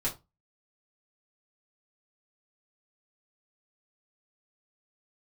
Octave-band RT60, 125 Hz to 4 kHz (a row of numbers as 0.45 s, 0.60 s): 0.30 s, 0.25 s, 0.25 s, 0.25 s, 0.20 s, 0.20 s